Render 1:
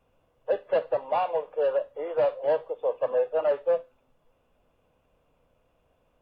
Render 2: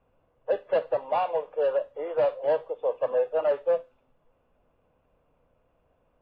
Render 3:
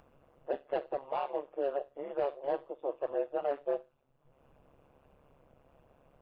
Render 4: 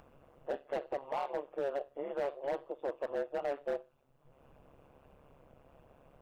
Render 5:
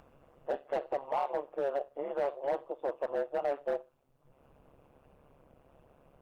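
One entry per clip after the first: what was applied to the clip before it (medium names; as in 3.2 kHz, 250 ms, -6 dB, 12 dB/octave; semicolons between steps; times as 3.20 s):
level-controlled noise filter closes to 2.2 kHz, open at -21 dBFS
upward compressor, threshold -42 dBFS; AM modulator 140 Hz, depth 90%; trim -4.5 dB
in parallel at +0.5 dB: compression, threshold -39 dBFS, peak gain reduction 12 dB; on the sum: hard clipper -25 dBFS, distortion -13 dB; trim -3.5 dB
dynamic bell 810 Hz, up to +5 dB, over -48 dBFS, Q 0.99; Opus 48 kbps 48 kHz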